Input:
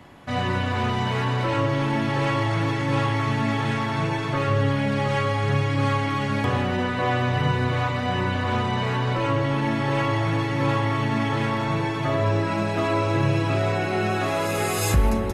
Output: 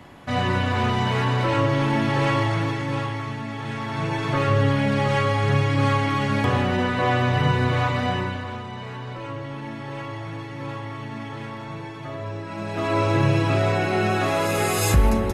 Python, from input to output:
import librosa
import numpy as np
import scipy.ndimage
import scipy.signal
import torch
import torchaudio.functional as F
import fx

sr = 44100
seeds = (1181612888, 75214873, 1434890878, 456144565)

y = fx.gain(x, sr, db=fx.line((2.37, 2.0), (3.49, -8.5), (4.31, 2.0), (8.05, 2.0), (8.59, -10.0), (12.45, -10.0), (13.01, 2.0)))